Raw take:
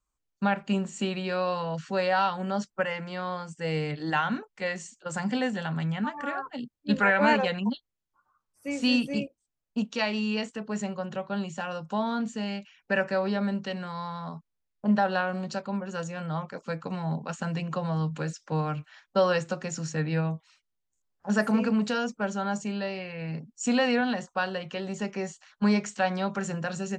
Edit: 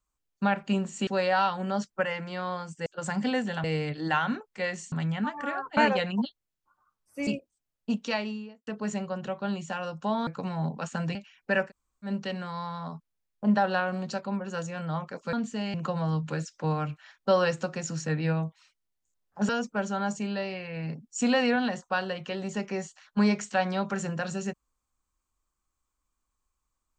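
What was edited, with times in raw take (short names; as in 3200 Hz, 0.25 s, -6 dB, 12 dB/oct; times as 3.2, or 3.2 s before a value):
1.07–1.87 cut
4.94–5.72 move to 3.66
6.57–7.25 cut
8.75–9.15 cut
9.89–10.55 studio fade out
12.15–12.56 swap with 16.74–17.62
13.08–13.48 room tone, crossfade 0.10 s
21.37–21.94 cut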